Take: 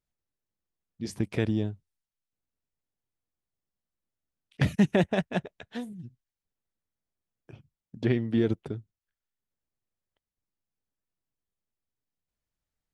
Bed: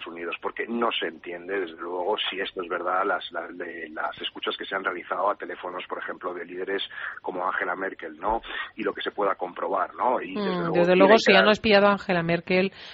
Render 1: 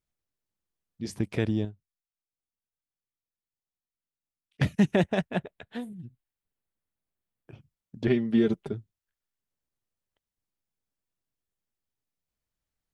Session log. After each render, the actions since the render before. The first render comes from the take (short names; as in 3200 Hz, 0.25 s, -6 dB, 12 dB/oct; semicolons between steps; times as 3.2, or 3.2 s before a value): 1.65–4.76 upward expander, over -40 dBFS; 5.27–7.53 bell 5800 Hz -12 dB 0.55 oct; 8.07–8.73 comb 5 ms, depth 71%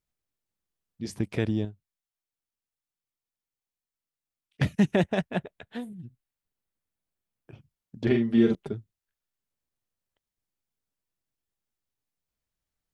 8.02–8.55 doubler 43 ms -5 dB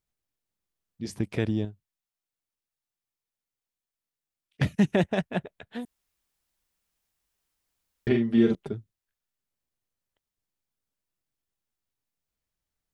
5.85–8.07 room tone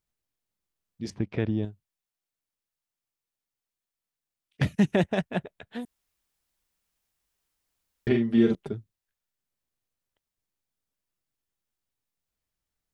1.1–1.63 air absorption 230 m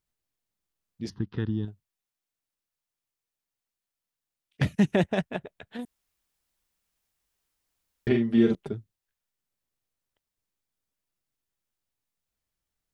1.09–1.68 fixed phaser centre 2300 Hz, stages 6; 5.36–5.79 compressor, threshold -32 dBFS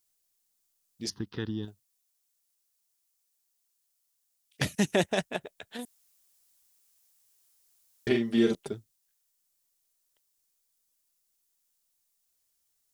tone controls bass -8 dB, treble +14 dB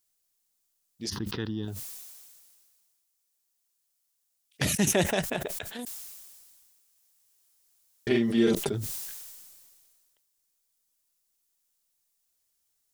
sustainer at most 30 dB/s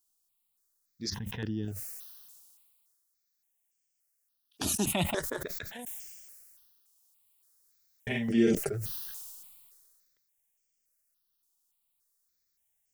step phaser 3.5 Hz 540–3900 Hz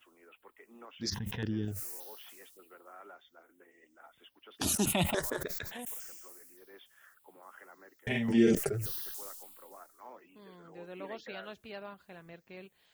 add bed -27 dB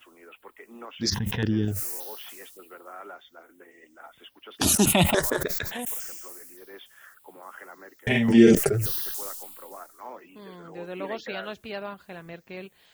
gain +9.5 dB